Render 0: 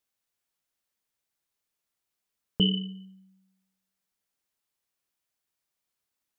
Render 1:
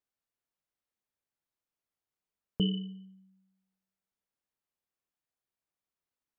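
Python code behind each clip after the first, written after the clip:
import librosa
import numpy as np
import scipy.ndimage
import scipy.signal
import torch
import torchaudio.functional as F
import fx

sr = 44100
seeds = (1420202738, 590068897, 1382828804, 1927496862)

y = fx.high_shelf(x, sr, hz=2200.0, db=-10.0)
y = F.gain(torch.from_numpy(y), -3.5).numpy()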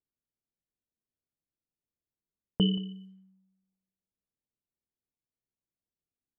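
y = fx.env_lowpass(x, sr, base_hz=360.0, full_db=-39.0)
y = y + 10.0 ** (-21.5 / 20.0) * np.pad(y, (int(177 * sr / 1000.0), 0))[:len(y)]
y = F.gain(torch.from_numpy(y), 3.5).numpy()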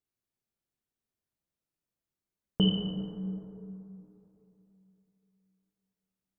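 y = fx.rev_plate(x, sr, seeds[0], rt60_s=3.1, hf_ratio=0.3, predelay_ms=0, drr_db=0.0)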